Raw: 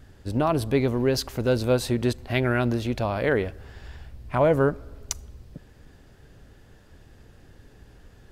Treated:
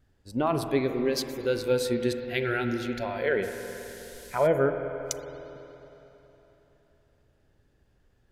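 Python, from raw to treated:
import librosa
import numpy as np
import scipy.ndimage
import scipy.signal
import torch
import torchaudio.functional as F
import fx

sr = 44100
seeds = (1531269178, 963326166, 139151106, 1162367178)

y = fx.noise_reduce_blind(x, sr, reduce_db=14)
y = fx.rev_spring(y, sr, rt60_s=3.6, pass_ms=(46, 52), chirp_ms=75, drr_db=6.5)
y = fx.dmg_noise_band(y, sr, seeds[0], low_hz=2700.0, high_hz=13000.0, level_db=-48.0, at=(3.42, 4.46), fade=0.02)
y = y * 10.0 ** (-2.5 / 20.0)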